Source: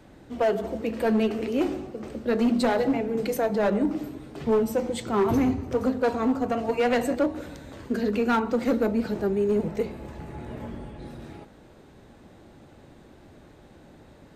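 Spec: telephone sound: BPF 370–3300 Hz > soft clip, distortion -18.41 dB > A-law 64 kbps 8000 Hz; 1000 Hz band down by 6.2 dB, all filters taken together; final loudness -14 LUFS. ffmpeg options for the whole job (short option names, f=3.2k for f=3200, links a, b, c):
-af "highpass=370,lowpass=3.3k,equalizer=f=1k:t=o:g=-9,asoftclip=threshold=-21.5dB,volume=18dB" -ar 8000 -c:a pcm_alaw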